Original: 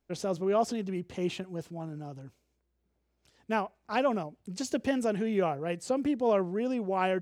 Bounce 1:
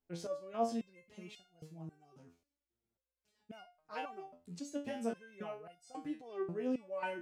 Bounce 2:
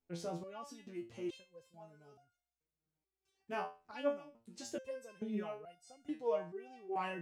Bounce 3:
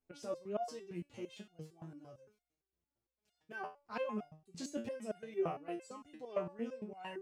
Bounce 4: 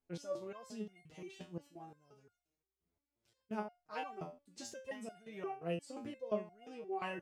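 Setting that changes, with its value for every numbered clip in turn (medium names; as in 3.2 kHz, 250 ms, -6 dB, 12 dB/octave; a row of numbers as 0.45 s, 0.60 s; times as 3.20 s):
resonator arpeggio, rate: 3.7 Hz, 2.3 Hz, 8.8 Hz, 5.7 Hz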